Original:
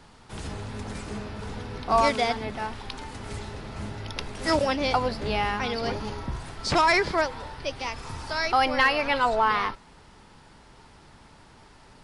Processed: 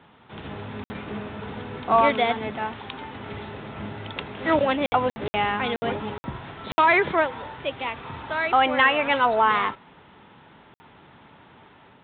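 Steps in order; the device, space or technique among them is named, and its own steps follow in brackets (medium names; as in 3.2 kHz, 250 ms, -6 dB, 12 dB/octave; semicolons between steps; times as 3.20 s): call with lost packets (high-pass 120 Hz 12 dB/octave; resampled via 8 kHz; level rider gain up to 3 dB; lost packets of 60 ms random)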